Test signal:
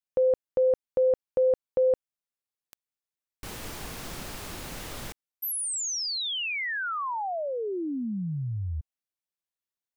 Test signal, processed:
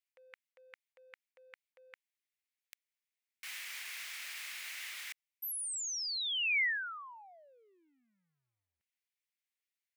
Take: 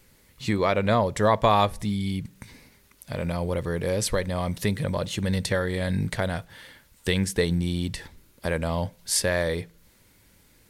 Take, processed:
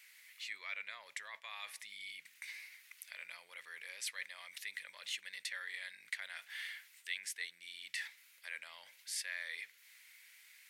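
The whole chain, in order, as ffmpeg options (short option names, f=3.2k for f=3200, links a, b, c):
-af "areverse,acompressor=threshold=-35dB:ratio=6:attack=2.3:release=140:knee=6:detection=peak,areverse,highpass=f=2.1k:t=q:w=3,volume=-2.5dB"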